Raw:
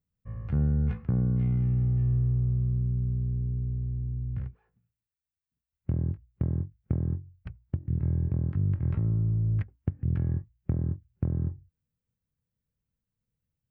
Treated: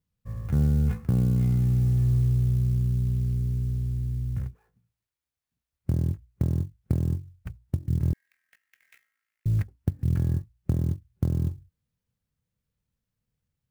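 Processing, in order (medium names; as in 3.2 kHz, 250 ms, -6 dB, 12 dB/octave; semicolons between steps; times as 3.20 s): 8.13–9.46 s: steep high-pass 1.8 kHz 48 dB/octave; sampling jitter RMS 0.03 ms; trim +3 dB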